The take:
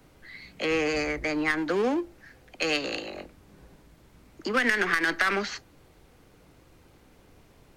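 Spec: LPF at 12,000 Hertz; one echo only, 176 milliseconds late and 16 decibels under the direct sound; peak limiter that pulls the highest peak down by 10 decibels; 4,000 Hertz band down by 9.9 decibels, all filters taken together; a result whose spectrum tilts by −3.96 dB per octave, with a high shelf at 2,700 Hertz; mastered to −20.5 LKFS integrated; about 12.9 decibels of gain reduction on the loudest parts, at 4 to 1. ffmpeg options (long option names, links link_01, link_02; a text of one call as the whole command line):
ffmpeg -i in.wav -af "lowpass=12000,highshelf=frequency=2700:gain=-9,equalizer=frequency=4000:width_type=o:gain=-6,acompressor=threshold=-38dB:ratio=4,alimiter=level_in=8.5dB:limit=-24dB:level=0:latency=1,volume=-8.5dB,aecho=1:1:176:0.158,volume=22dB" out.wav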